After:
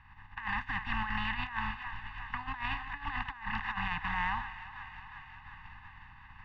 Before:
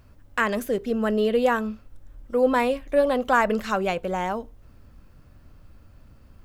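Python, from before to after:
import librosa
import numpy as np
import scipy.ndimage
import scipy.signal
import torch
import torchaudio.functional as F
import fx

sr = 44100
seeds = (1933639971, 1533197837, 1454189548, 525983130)

y = fx.spec_flatten(x, sr, power=0.36)
y = scipy.signal.sosfilt(scipy.signal.butter(4, 2200.0, 'lowpass', fs=sr, output='sos'), y)
y = fx.peak_eq(y, sr, hz=260.0, db=-13.0, octaves=1.4)
y = y + 0.86 * np.pad(y, (int(1.1 * sr / 1000.0), 0))[:len(y)]
y = fx.echo_thinned(y, sr, ms=358, feedback_pct=73, hz=450.0, wet_db=-16.0)
y = fx.over_compress(y, sr, threshold_db=-28.0, ratio=-0.5)
y = scipy.signal.sosfilt(scipy.signal.cheby1(4, 1.0, [290.0, 810.0], 'bandstop', fs=sr, output='sos'), y)
y = F.gain(torch.from_numpy(y), -5.0).numpy()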